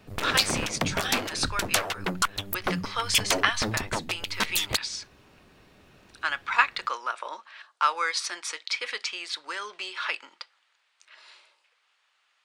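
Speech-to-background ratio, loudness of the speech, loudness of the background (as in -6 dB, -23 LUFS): -1.0 dB, -29.5 LUFS, -28.5 LUFS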